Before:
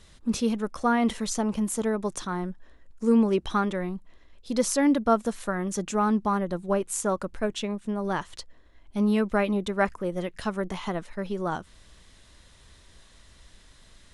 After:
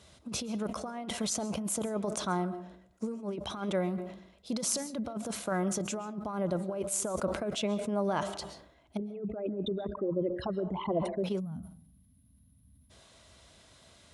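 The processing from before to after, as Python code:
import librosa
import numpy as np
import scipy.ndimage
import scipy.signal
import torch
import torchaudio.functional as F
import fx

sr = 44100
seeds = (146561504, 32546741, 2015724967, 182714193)

y = fx.envelope_sharpen(x, sr, power=3.0, at=(8.97, 11.24))
y = fx.over_compress(y, sr, threshold_db=-28.0, ratio=-0.5)
y = scipy.signal.sosfilt(scipy.signal.butter(4, 67.0, 'highpass', fs=sr, output='sos'), y)
y = fx.peak_eq(y, sr, hz=650.0, db=8.0, octaves=0.43)
y = fx.notch(y, sr, hz=1800.0, q=8.0)
y = fx.rev_freeverb(y, sr, rt60_s=0.62, hf_ratio=0.35, predelay_ms=95, drr_db=16.5)
y = fx.spec_box(y, sr, start_s=11.4, length_s=1.51, low_hz=280.0, high_hz=9700.0, gain_db=-29)
y = fx.sustainer(y, sr, db_per_s=75.0)
y = F.gain(torch.from_numpy(y), -5.0).numpy()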